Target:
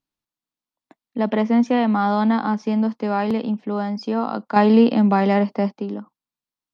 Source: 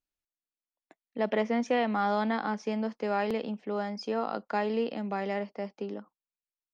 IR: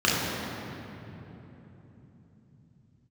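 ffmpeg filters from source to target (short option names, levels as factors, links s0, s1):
-filter_complex "[0:a]asettb=1/sr,asplit=3[s0][s1][s2];[s0]atrim=end=4.564[s3];[s1]atrim=start=4.56:end=5.72,asetpts=PTS-STARTPTS,afade=t=in:d=0.004:c=qsin,afade=t=out:st=1.156:d=0.004:c=qsin,acontrast=81[s4];[s2]atrim=start=5.716[s5];[s3][s4]acrossfade=d=0.004:c1=hsin:c2=qsin[s6];[s6][s5]acrossfade=d=0.004:c1=qsin:c2=hsin,equalizer=f=125:t=o:w=1:g=11,equalizer=f=250:t=o:w=1:g=11,equalizer=f=1000:t=o:w=1:g=9,equalizer=f=4000:t=o:w=1:g=6"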